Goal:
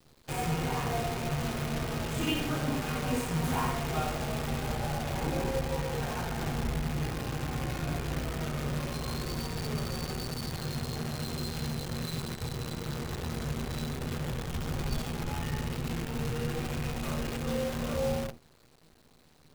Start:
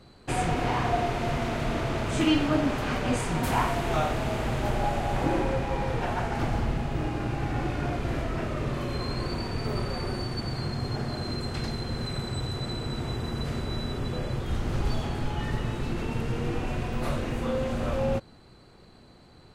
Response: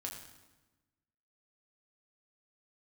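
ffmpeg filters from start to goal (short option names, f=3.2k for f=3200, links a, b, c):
-filter_complex "[1:a]atrim=start_sample=2205,afade=t=out:st=0.41:d=0.01,atrim=end_sample=18522,asetrate=74970,aresample=44100[a];[0:a][a]afir=irnorm=-1:irlink=0,acrusher=bits=7:dc=4:mix=0:aa=0.000001"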